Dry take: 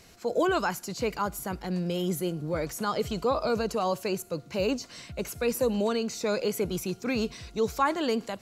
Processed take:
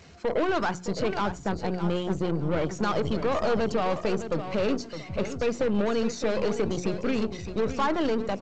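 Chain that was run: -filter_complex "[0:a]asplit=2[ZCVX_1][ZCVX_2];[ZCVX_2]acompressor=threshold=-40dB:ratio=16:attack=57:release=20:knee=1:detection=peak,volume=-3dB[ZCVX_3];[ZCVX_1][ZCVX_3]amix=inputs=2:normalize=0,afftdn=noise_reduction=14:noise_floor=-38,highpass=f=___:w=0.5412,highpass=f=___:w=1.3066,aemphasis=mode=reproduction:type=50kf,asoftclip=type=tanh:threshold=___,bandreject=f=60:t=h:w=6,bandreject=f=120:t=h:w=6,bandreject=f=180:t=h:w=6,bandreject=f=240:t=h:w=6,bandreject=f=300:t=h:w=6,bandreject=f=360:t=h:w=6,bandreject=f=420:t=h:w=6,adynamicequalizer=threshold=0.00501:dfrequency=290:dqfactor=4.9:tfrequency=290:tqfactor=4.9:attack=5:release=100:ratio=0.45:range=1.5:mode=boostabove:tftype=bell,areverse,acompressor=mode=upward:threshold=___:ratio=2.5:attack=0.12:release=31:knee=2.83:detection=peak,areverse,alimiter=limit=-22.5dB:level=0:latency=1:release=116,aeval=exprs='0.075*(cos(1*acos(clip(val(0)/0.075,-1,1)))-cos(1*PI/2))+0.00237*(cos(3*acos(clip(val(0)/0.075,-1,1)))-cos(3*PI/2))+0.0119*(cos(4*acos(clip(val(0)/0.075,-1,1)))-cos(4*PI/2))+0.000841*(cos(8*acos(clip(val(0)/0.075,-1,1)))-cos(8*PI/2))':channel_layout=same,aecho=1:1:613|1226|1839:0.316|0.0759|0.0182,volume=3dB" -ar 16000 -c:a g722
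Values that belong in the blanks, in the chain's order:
57, 57, -21dB, -39dB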